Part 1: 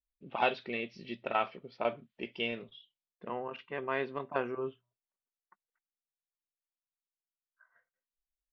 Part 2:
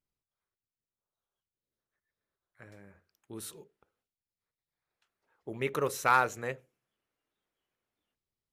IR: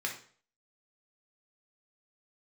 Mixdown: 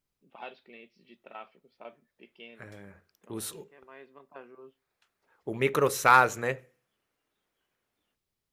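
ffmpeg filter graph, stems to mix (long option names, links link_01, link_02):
-filter_complex "[0:a]highpass=frequency=150:width=0.5412,highpass=frequency=150:width=1.3066,volume=-14.5dB,asplit=2[link_01][link_02];[link_02]volume=-23.5dB[link_03];[1:a]acontrast=46,volume=-0.5dB,asplit=3[link_04][link_05][link_06];[link_05]volume=-21dB[link_07];[link_06]apad=whole_len=375823[link_08];[link_01][link_08]sidechaincompress=threshold=-39dB:ratio=8:attack=7.9:release=1380[link_09];[2:a]atrim=start_sample=2205[link_10];[link_03][link_07]amix=inputs=2:normalize=0[link_11];[link_11][link_10]afir=irnorm=-1:irlink=0[link_12];[link_09][link_04][link_12]amix=inputs=3:normalize=0"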